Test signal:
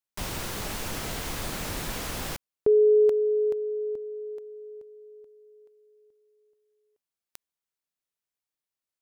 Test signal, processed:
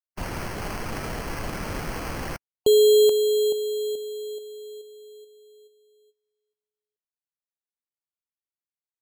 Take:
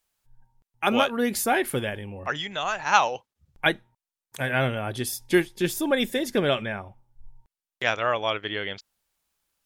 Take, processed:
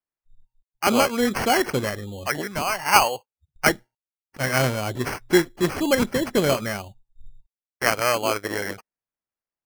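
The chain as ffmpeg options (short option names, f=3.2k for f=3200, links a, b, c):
-af "afftdn=nr=25:nf=-43,acrusher=samples=12:mix=1:aa=0.000001,volume=3dB"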